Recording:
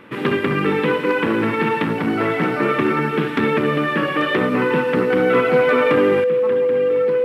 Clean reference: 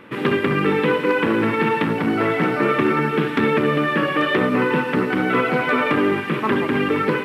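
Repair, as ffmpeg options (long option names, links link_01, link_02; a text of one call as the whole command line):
ffmpeg -i in.wav -af "bandreject=frequency=500:width=30,asetnsamples=nb_out_samples=441:pad=0,asendcmd='6.24 volume volume 10.5dB',volume=0dB" out.wav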